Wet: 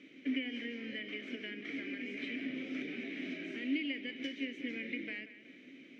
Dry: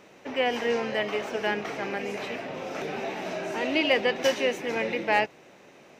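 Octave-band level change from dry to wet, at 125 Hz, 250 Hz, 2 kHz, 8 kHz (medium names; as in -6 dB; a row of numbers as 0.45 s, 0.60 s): -13.5 dB, -4.0 dB, -11.5 dB, under -20 dB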